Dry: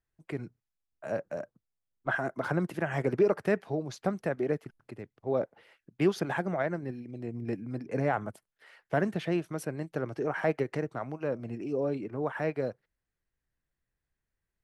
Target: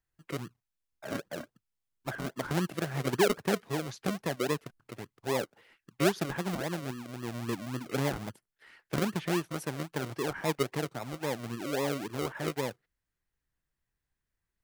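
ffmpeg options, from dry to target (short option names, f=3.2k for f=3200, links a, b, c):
-filter_complex "[0:a]acrossover=split=640[a][b];[a]acrusher=samples=41:mix=1:aa=0.000001:lfo=1:lforange=24.6:lforate=3.7[c];[b]alimiter=level_in=7dB:limit=-24dB:level=0:latency=1:release=497,volume=-7dB[d];[c][d]amix=inputs=2:normalize=0"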